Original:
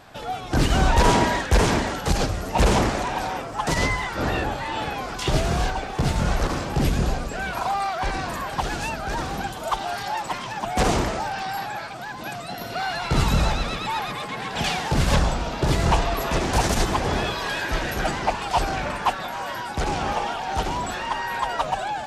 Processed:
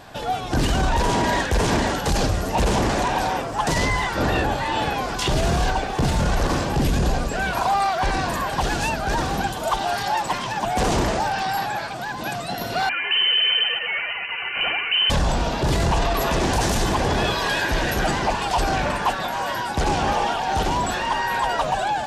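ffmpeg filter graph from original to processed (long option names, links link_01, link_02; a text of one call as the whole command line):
ffmpeg -i in.wav -filter_complex "[0:a]asettb=1/sr,asplit=3[link_01][link_02][link_03];[link_01]atrim=end=12.894[link_04];[link_02]atrim=start=12.89:end=15.1,asetpts=PTS-STARTPTS,afade=type=in:duration=0.004:curve=qsin,afade=type=out:start_time=2.206:duration=0.004:curve=qsin,aemphasis=mode=reproduction:type=75kf,aecho=1:1:3:0.36,atrim=end_sample=97461,lowpass=frequency=2600:width_type=q:width=0.5098,lowpass=frequency=2600:width_type=q:width=0.6013,lowpass=frequency=2600:width_type=q:width=0.9,lowpass=frequency=2600:width_type=q:width=2.563,afreqshift=-3100[link_05];[link_03]atrim=start=15.096[link_06];[link_04][link_05]acrossfade=duration=0.004:curve1=hsin:curve2=qsin[link_07];[link_07][link_06]acrossfade=duration=0.004:curve1=qsin:curve2=hsin,equalizer=frequency=2200:width=4.7:gain=-3,bandreject=frequency=1300:width=13,alimiter=limit=-17.5dB:level=0:latency=1:release=11,volume=5dB" out.wav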